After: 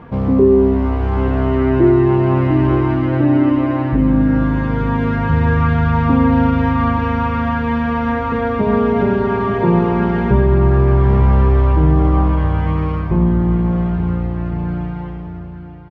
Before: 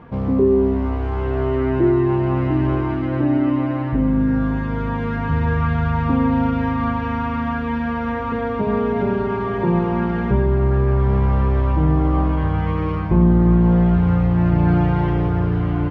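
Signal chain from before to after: fade out at the end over 4.77 s; delay 888 ms -11.5 dB; trim +4.5 dB

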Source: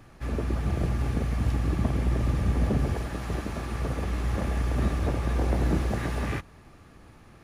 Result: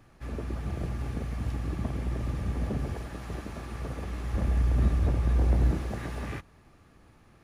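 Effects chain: 4.34–5.71 s: bass shelf 180 Hz +10 dB; trim -6 dB

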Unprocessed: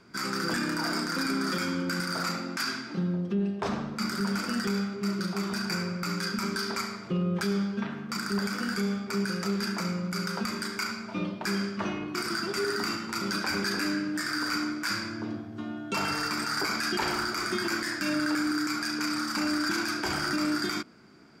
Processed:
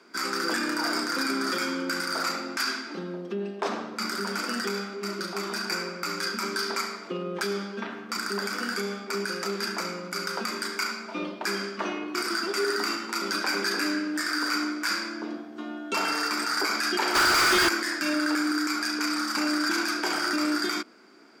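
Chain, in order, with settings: high-pass 270 Hz 24 dB/octave; 17.15–17.69 s: overdrive pedal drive 30 dB, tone 6.5 kHz, clips at -17.5 dBFS; trim +3 dB

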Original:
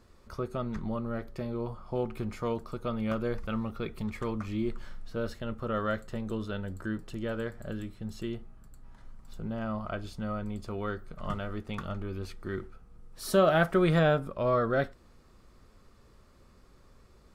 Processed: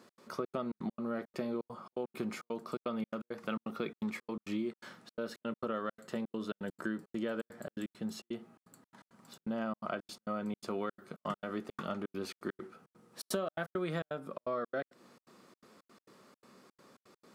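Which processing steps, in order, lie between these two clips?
high-pass 180 Hz 24 dB/octave; compression 12:1, threshold -35 dBFS, peak gain reduction 18 dB; trance gate "x.xxx.xx.x.xx" 168 bpm -60 dB; trim +3.5 dB

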